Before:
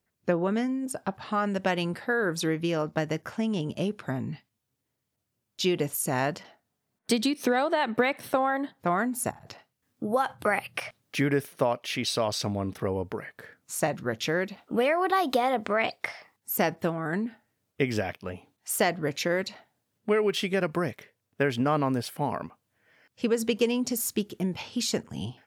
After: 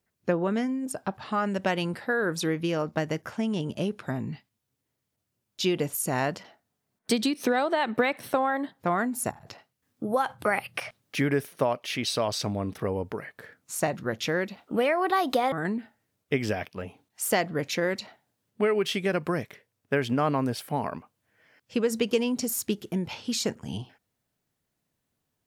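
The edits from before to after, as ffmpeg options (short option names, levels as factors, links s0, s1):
-filter_complex "[0:a]asplit=2[s0][s1];[s0]atrim=end=15.522[s2];[s1]atrim=start=16.998[s3];[s2][s3]acrossfade=d=0.004:c1=hsin:c2=hsin"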